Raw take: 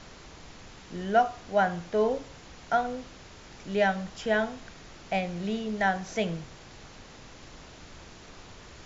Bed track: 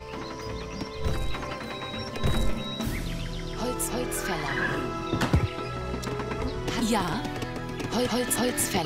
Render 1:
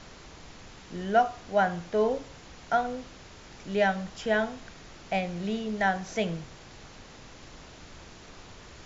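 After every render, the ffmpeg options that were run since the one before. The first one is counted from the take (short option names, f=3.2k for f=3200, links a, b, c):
-af anull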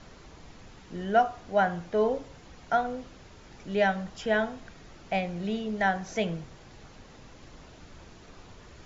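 -af "afftdn=nr=6:nf=-49"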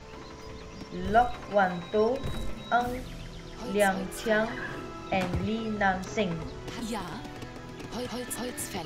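-filter_complex "[1:a]volume=-9dB[a];[0:a][a]amix=inputs=2:normalize=0"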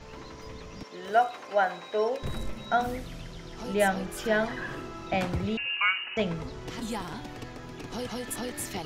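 -filter_complex "[0:a]asettb=1/sr,asplit=3[a][b][c];[a]atrim=end=0.834[d];[b]atrim=start=0.83:end=2.23,asetpts=PTS-STARTPTS,afade=t=in:d=0.004:c=qsin,afade=t=out:st=1.396:d=0.004:c=qsin,highpass=390[e];[c]atrim=start=2.226[f];[d][e]acrossfade=d=0.004:c1=hsin:c2=qsin[g];[g][f]acrossfade=d=0.004:c1=qsin:c2=hsin,asettb=1/sr,asplit=3[h][i][j];[h]atrim=end=5.574[k];[i]atrim=start=5.57:end=6.17,asetpts=PTS-STARTPTS,afade=t=in:d=0.004:c=qsin,afade=t=out:st=0.596:d=0.004:c=qsin,lowpass=f=2.6k:t=q:w=0.5098,lowpass=f=2.6k:t=q:w=0.6013,lowpass=f=2.6k:t=q:w=0.9,lowpass=f=2.6k:t=q:w=2.563,afreqshift=-3000[l];[j]atrim=start=6.166[m];[k][l]acrossfade=d=0.004:c1=hsin:c2=qsin[n];[n][m]acrossfade=d=0.004:c1=qsin:c2=hsin"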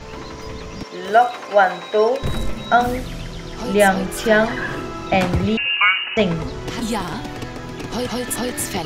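-af "volume=11dB,alimiter=limit=-3dB:level=0:latency=1"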